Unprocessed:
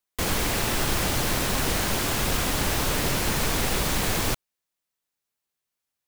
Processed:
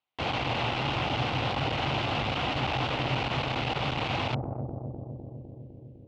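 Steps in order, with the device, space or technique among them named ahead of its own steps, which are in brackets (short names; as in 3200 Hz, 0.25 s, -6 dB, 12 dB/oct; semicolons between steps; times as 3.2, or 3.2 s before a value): analogue delay pedal into a guitar amplifier (analogue delay 0.252 s, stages 1024, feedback 75%, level -9 dB; tube stage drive 32 dB, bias 0.75; speaker cabinet 92–3600 Hz, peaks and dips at 130 Hz +9 dB, 180 Hz -9 dB, 400 Hz -5 dB, 790 Hz +7 dB, 1700 Hz -7 dB, 2800 Hz +5 dB); gain +7 dB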